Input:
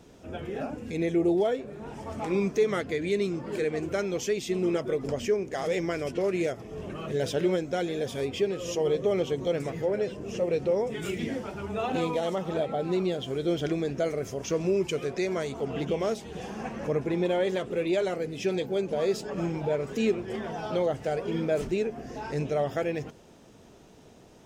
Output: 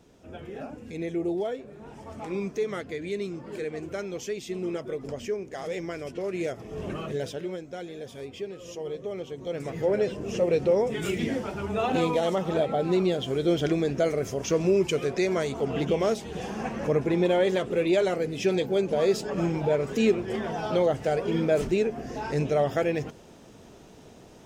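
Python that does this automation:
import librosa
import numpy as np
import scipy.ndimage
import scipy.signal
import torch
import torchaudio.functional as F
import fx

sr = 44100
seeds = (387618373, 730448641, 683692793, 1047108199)

y = fx.gain(x, sr, db=fx.line((6.25, -4.5), (6.92, 4.5), (7.42, -8.5), (9.34, -8.5), (9.9, 3.5)))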